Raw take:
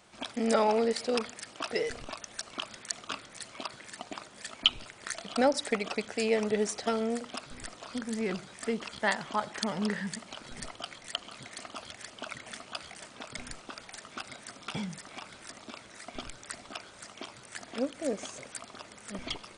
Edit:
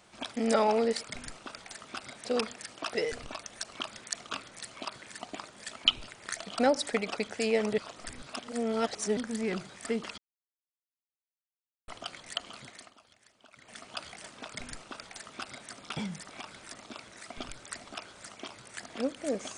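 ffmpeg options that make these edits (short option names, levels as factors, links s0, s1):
-filter_complex "[0:a]asplit=9[s0][s1][s2][s3][s4][s5][s6][s7][s8];[s0]atrim=end=1.032[s9];[s1]atrim=start=13.258:end=14.482[s10];[s2]atrim=start=1.028:end=6.562[s11];[s3]atrim=start=6.558:end=7.952,asetpts=PTS-STARTPTS,areverse[s12];[s4]atrim=start=7.948:end=8.96,asetpts=PTS-STARTPTS,afade=t=out:st=1.008:d=0.004:c=hsin[s13];[s5]atrim=start=8.96:end=10.66,asetpts=PTS-STARTPTS,volume=0[s14];[s6]atrim=start=10.66:end=11.75,asetpts=PTS-STARTPTS,afade=t=in:d=0.004:c=hsin,afade=t=out:st=0.66:d=0.43:silence=0.133352[s15];[s7]atrim=start=11.75:end=12.31,asetpts=PTS-STARTPTS,volume=0.133[s16];[s8]atrim=start=12.31,asetpts=PTS-STARTPTS,afade=t=in:d=0.43:silence=0.133352[s17];[s9][s10]acrossfade=d=0.004:c1=hsin:c2=hsin[s18];[s18][s11]acrossfade=d=0.004:c1=hsin:c2=hsin[s19];[s19][s12]acrossfade=d=0.004:c1=hsin:c2=hsin[s20];[s13][s14][s15][s16][s17]concat=n=5:v=0:a=1[s21];[s20][s21]acrossfade=d=0.004:c1=hsin:c2=hsin"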